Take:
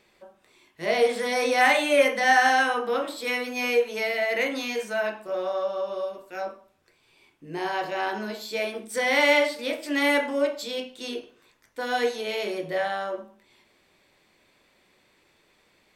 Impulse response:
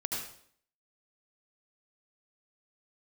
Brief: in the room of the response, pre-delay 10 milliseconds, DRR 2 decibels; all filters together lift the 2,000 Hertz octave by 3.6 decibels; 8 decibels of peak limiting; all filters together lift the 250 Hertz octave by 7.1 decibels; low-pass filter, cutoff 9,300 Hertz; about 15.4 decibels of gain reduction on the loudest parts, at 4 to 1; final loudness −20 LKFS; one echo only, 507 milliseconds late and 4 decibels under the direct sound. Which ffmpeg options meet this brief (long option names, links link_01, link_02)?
-filter_complex "[0:a]lowpass=9300,equalizer=frequency=250:width_type=o:gain=8,equalizer=frequency=2000:width_type=o:gain=4,acompressor=threshold=-32dB:ratio=4,alimiter=level_in=4dB:limit=-24dB:level=0:latency=1,volume=-4dB,aecho=1:1:507:0.631,asplit=2[link_01][link_02];[1:a]atrim=start_sample=2205,adelay=10[link_03];[link_02][link_03]afir=irnorm=-1:irlink=0,volume=-6dB[link_04];[link_01][link_04]amix=inputs=2:normalize=0,volume=13.5dB"